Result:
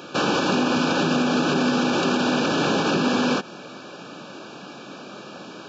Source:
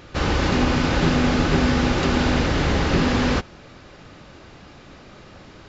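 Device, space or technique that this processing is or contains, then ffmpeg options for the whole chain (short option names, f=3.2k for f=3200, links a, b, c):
PA system with an anti-feedback notch: -af "highpass=f=180:w=0.5412,highpass=f=180:w=1.3066,asuperstop=centerf=2000:order=20:qfactor=3.9,alimiter=limit=-19.5dB:level=0:latency=1:release=101,volume=7dB"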